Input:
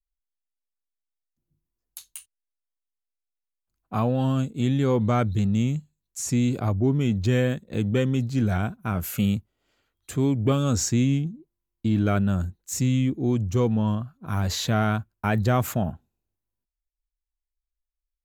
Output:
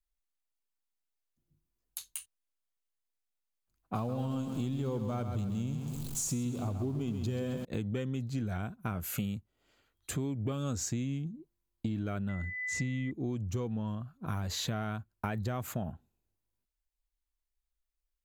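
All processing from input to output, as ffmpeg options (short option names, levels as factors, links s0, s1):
-filter_complex "[0:a]asettb=1/sr,asplit=3[s0][s1][s2];[s0]atrim=end=3.954[s3];[s1]atrim=start=3.95:end=7.65,asetpts=PTS-STARTPTS,afade=t=in:d=0.004:c=qsin,afade=t=out:st=3.696:d=0.004:c=qsin,aeval=exprs='val(0)+0.5*0.0178*sgn(val(0))':c=same,equalizer=f=1900:w=1.9:g=-9,aecho=1:1:132|264|396|528|660:0.376|0.165|0.0728|0.032|0.0141,atrim=end_sample=163170[s4];[s2]atrim=start=7.646[s5];[s3][s4]acrossfade=d=0.004:c1=hsin:c2=qsin[s6];[s6][s5]acrossfade=d=0.004:c1=qsin:c2=hsin,asettb=1/sr,asplit=3[s7][s8][s9];[s7]atrim=end=12.294[s10];[s8]atrim=start=12.29:end=13.11,asetpts=PTS-STARTPTS,afade=t=in:d=0.004:c=qsin,afade=t=out:st=0.816:d=0.004:c=qsin,lowpass=4900,aeval=exprs='val(0)+0.0251*sin(2*PI*2000*n/s)':c=same[s11];[s9]atrim=start=13.106[s12];[s10][s11]acrossfade=d=0.004:c1=hsin:c2=qsin[s13];[s13][s12]acrossfade=d=0.004:c1=qsin:c2=hsin,bandreject=f=5500:w=26,acompressor=threshold=0.0251:ratio=6"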